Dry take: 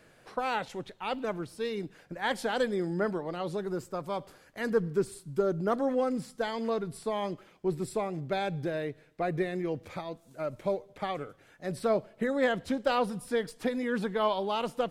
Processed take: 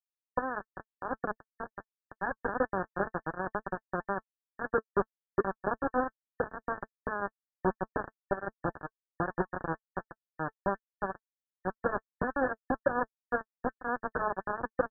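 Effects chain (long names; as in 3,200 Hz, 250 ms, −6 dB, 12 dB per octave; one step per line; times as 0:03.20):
downward compressor 2.5 to 1, threshold −35 dBFS, peak gain reduction 9.5 dB
bit reduction 5 bits
linear-phase brick-wall low-pass 1,800 Hz
notch comb filter 220 Hz
level +7 dB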